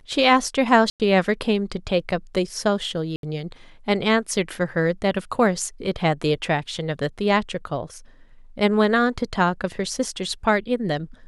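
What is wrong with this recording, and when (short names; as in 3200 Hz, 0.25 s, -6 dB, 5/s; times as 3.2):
0.9–1 gap 98 ms
3.16–3.23 gap 72 ms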